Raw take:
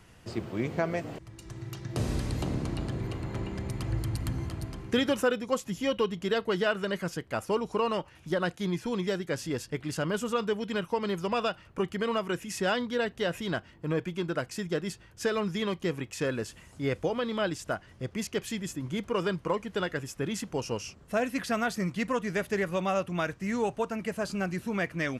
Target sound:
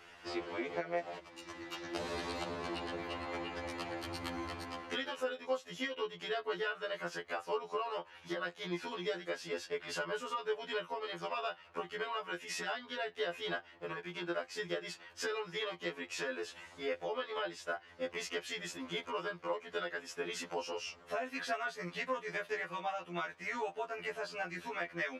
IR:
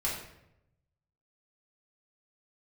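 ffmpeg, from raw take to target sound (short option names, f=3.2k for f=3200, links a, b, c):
-filter_complex "[0:a]acrossover=split=400 5100:gain=0.0891 1 0.178[a][b][c];[a][b][c]amix=inputs=3:normalize=0,acompressor=threshold=-41dB:ratio=4,afftfilt=real='re*2*eq(mod(b,4),0)':imag='im*2*eq(mod(b,4),0)':win_size=2048:overlap=0.75,volume=7.5dB"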